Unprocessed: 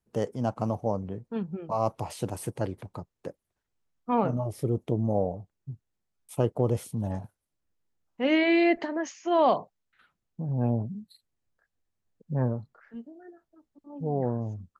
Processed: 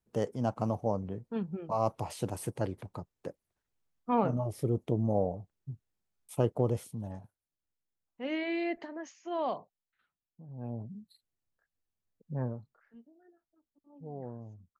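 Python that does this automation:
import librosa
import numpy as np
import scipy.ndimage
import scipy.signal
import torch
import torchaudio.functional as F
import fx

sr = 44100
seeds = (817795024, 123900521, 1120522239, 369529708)

y = fx.gain(x, sr, db=fx.line((6.59, -2.5), (7.2, -11.0), (9.51, -11.0), (10.46, -18.0), (10.96, -7.0), (12.39, -7.0), (13.03, -14.0)))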